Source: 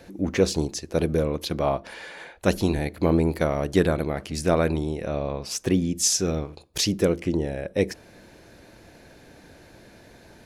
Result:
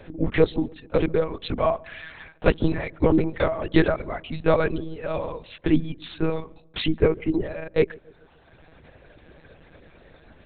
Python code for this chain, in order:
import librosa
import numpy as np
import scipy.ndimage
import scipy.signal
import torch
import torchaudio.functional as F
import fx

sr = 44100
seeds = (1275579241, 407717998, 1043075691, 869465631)

y = fx.dereverb_blind(x, sr, rt60_s=1.5)
y = fx.lpc_monotone(y, sr, seeds[0], pitch_hz=160.0, order=8)
y = fx.echo_filtered(y, sr, ms=142, feedback_pct=53, hz=830.0, wet_db=-23.5)
y = y * 10.0 ** (3.0 / 20.0)